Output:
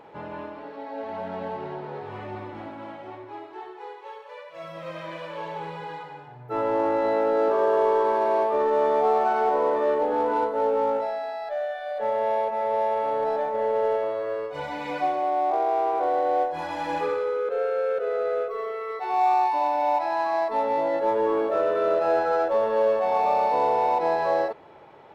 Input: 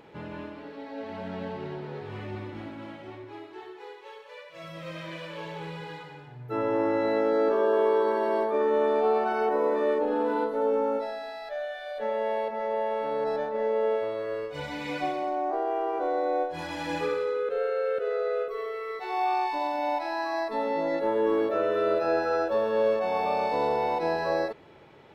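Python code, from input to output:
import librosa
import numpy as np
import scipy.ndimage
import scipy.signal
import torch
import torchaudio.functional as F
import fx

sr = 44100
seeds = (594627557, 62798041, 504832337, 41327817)

p1 = fx.peak_eq(x, sr, hz=820.0, db=11.5, octaves=1.8)
p2 = np.clip(p1, -10.0 ** (-24.0 / 20.0), 10.0 ** (-24.0 / 20.0))
p3 = p1 + (p2 * 10.0 ** (-9.5 / 20.0))
y = p3 * 10.0 ** (-6.0 / 20.0)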